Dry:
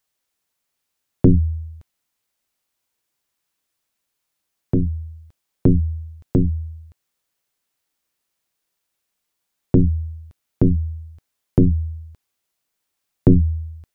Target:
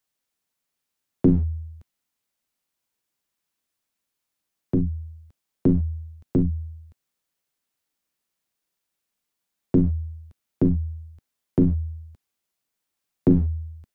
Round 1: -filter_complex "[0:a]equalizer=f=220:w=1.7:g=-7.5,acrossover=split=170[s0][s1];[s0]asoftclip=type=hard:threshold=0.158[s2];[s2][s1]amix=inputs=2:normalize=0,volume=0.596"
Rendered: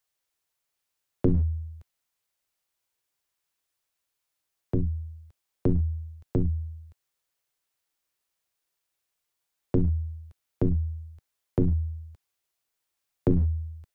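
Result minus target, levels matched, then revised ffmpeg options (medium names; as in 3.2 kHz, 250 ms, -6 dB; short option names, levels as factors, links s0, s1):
250 Hz band -3.0 dB
-filter_complex "[0:a]equalizer=f=220:w=1.7:g=4,acrossover=split=170[s0][s1];[s0]asoftclip=type=hard:threshold=0.158[s2];[s2][s1]amix=inputs=2:normalize=0,volume=0.596"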